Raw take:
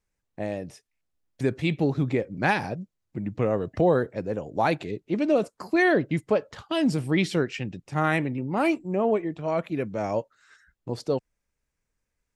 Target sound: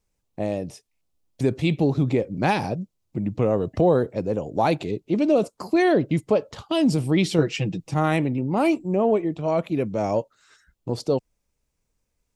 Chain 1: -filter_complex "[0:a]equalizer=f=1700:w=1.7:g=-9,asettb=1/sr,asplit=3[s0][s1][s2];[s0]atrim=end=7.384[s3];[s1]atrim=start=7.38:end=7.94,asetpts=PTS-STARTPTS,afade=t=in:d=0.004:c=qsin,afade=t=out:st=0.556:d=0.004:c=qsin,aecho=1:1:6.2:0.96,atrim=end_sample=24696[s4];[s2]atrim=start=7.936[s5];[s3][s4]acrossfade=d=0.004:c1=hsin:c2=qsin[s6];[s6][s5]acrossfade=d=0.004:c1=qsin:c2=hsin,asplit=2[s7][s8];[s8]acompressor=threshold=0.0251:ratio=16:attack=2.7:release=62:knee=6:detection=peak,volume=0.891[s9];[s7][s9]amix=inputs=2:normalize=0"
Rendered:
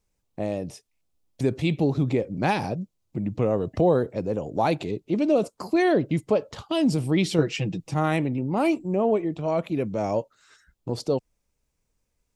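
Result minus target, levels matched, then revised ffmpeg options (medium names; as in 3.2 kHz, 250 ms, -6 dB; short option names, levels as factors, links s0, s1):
compression: peak gain reduction +8.5 dB
-filter_complex "[0:a]equalizer=f=1700:w=1.7:g=-9,asettb=1/sr,asplit=3[s0][s1][s2];[s0]atrim=end=7.384[s3];[s1]atrim=start=7.38:end=7.94,asetpts=PTS-STARTPTS,afade=t=in:d=0.004:c=qsin,afade=t=out:st=0.556:d=0.004:c=qsin,aecho=1:1:6.2:0.96,atrim=end_sample=24696[s4];[s2]atrim=start=7.936[s5];[s3][s4]acrossfade=d=0.004:c1=hsin:c2=qsin[s6];[s6][s5]acrossfade=d=0.004:c1=qsin:c2=hsin,asplit=2[s7][s8];[s8]acompressor=threshold=0.0708:ratio=16:attack=2.7:release=62:knee=6:detection=peak,volume=0.891[s9];[s7][s9]amix=inputs=2:normalize=0"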